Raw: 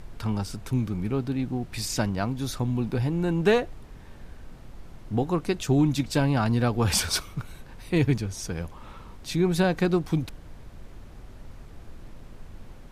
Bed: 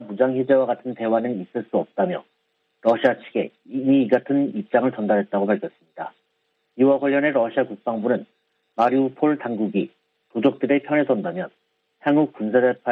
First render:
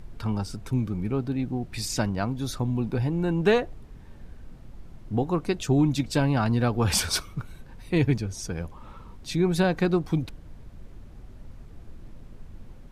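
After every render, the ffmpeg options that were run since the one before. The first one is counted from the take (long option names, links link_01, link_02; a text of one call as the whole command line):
ffmpeg -i in.wav -af "afftdn=noise_reduction=6:noise_floor=-46" out.wav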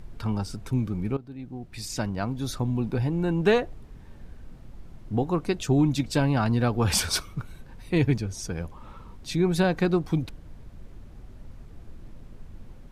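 ffmpeg -i in.wav -filter_complex "[0:a]asplit=2[link_01][link_02];[link_01]atrim=end=1.17,asetpts=PTS-STARTPTS,afade=type=out:start_time=1.166:duration=0.004:curve=hsin:silence=0.141254[link_03];[link_02]atrim=start=1.17,asetpts=PTS-STARTPTS,afade=type=in:duration=1.3:silence=0.141254[link_04];[link_03][link_04]concat=n=2:v=0:a=1" out.wav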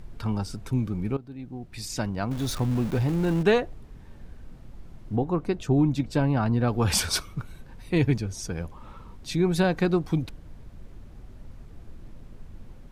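ffmpeg -i in.wav -filter_complex "[0:a]asettb=1/sr,asplit=3[link_01][link_02][link_03];[link_01]atrim=end=2.314[link_04];[link_02]atrim=start=2.31:end=3.43,asetpts=PTS-STARTPTS,afade=type=in:duration=0.004:curve=qsin,afade=type=out:start_time=1.116:duration=0.004:curve=qsin,aeval=exprs='val(0)+0.5*0.0224*sgn(val(0))':channel_layout=same[link_05];[link_03]atrim=start=3.426[link_06];[link_04][link_05]acrossfade=duration=0.004:curve1=hsin:curve2=qsin[link_07];[link_07][link_06]acrossfade=duration=0.004:curve1=qsin:curve2=hsin,asettb=1/sr,asplit=3[link_08][link_09][link_10];[link_08]atrim=end=5.164[link_11];[link_09]atrim=start=5.16:end=6.68,asetpts=PTS-STARTPTS,afade=type=in:duration=0.004:curve=qsin,afade=type=out:start_time=1.516:duration=0.004:curve=qsin,highshelf=frequency=2400:gain=-10[link_12];[link_10]atrim=start=6.676[link_13];[link_11][link_12]acrossfade=duration=0.004:curve1=hsin:curve2=qsin[link_14];[link_14][link_13]acrossfade=duration=0.004:curve1=qsin:curve2=hsin" out.wav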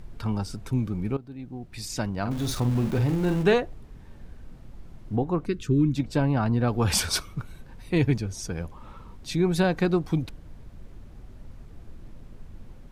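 ffmpeg -i in.wav -filter_complex "[0:a]asettb=1/sr,asplit=3[link_01][link_02][link_03];[link_01]atrim=end=2.204[link_04];[link_02]atrim=start=2.2:end=3.54,asetpts=PTS-STARTPTS,afade=type=in:duration=0.004:curve=qsin,afade=type=out:start_time=1.336:duration=0.004:curve=qsin,asplit=2[link_05][link_06];[link_06]adelay=50,volume=-8.5dB[link_07];[link_05][link_07]amix=inputs=2:normalize=0,atrim=end_sample=59094[link_08];[link_03]atrim=start=3.536[link_09];[link_04][link_08]acrossfade=duration=0.004:curve1=hsin:curve2=qsin[link_10];[link_10][link_09]acrossfade=duration=0.004:curve1=qsin:curve2=hsin,asettb=1/sr,asplit=3[link_11][link_12][link_13];[link_11]atrim=end=5.464[link_14];[link_12]atrim=start=5.46:end=5.96,asetpts=PTS-STARTPTS,afade=type=in:duration=0.004:curve=qsin,afade=type=out:start_time=0.496:duration=0.004:curve=qsin,asuperstop=centerf=740:order=4:qfactor=0.87[link_15];[link_13]atrim=start=5.956[link_16];[link_14][link_15]acrossfade=duration=0.004:curve1=hsin:curve2=qsin[link_17];[link_17][link_16]acrossfade=duration=0.004:curve1=qsin:curve2=hsin" out.wav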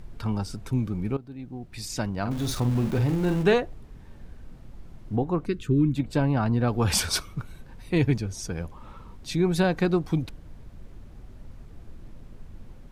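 ffmpeg -i in.wav -filter_complex "[0:a]asettb=1/sr,asplit=3[link_01][link_02][link_03];[link_01]atrim=end=5.624[link_04];[link_02]atrim=start=5.62:end=6.13,asetpts=PTS-STARTPTS,afade=type=in:duration=0.004:curve=qsin,afade=type=out:start_time=0.506:duration=0.004:curve=qsin,equalizer=frequency=5500:width_type=o:width=0.54:gain=-11.5[link_05];[link_03]atrim=start=6.126[link_06];[link_04][link_05]acrossfade=duration=0.004:curve1=hsin:curve2=qsin[link_07];[link_07][link_06]acrossfade=duration=0.004:curve1=qsin:curve2=hsin" out.wav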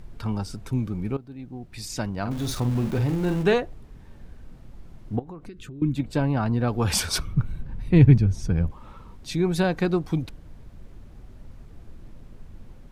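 ffmpeg -i in.wav -filter_complex "[0:a]asettb=1/sr,asplit=3[link_01][link_02][link_03];[link_01]atrim=end=5.194[link_04];[link_02]atrim=start=5.19:end=5.82,asetpts=PTS-STARTPTS,afade=type=in:duration=0.004:curve=qsin,afade=type=out:start_time=0.626:duration=0.004:curve=qsin,acompressor=threshold=-35dB:ratio=20:attack=3.2:release=140:knee=1:detection=peak[link_05];[link_03]atrim=start=5.816[link_06];[link_04][link_05]acrossfade=duration=0.004:curve1=hsin:curve2=qsin[link_07];[link_07][link_06]acrossfade=duration=0.004:curve1=qsin:curve2=hsin,asettb=1/sr,asplit=3[link_08][link_09][link_10];[link_08]atrim=end=7.184[link_11];[link_09]atrim=start=7.18:end=8.71,asetpts=PTS-STARTPTS,afade=type=in:duration=0.004:curve=qsin,afade=type=out:start_time=1.526:duration=0.004:curve=qsin,bass=frequency=250:gain=12,treble=frequency=4000:gain=-8[link_12];[link_10]atrim=start=8.706[link_13];[link_11][link_12]acrossfade=duration=0.004:curve1=hsin:curve2=qsin[link_14];[link_14][link_13]acrossfade=duration=0.004:curve1=qsin:curve2=hsin" out.wav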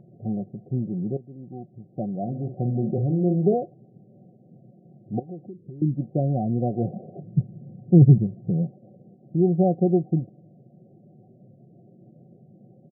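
ffmpeg -i in.wav -af "afftfilt=real='re*between(b*sr/4096,100,770)':imag='im*between(b*sr/4096,100,770)':win_size=4096:overlap=0.75,aecho=1:1:5.5:0.48" out.wav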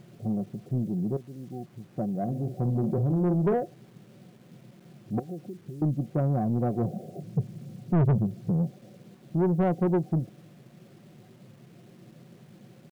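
ffmpeg -i in.wav -af "acrusher=bits=9:mix=0:aa=0.000001,asoftclip=type=tanh:threshold=-19dB" out.wav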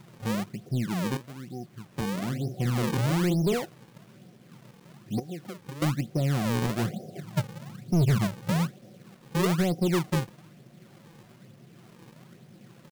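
ffmpeg -i in.wav -filter_complex "[0:a]acrossover=split=600[link_01][link_02];[link_01]acrusher=samples=37:mix=1:aa=0.000001:lfo=1:lforange=59.2:lforate=1.1[link_03];[link_02]asoftclip=type=tanh:threshold=-40dB[link_04];[link_03][link_04]amix=inputs=2:normalize=0" out.wav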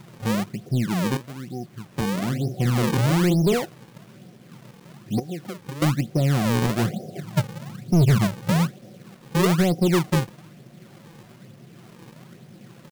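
ffmpeg -i in.wav -af "volume=5.5dB" out.wav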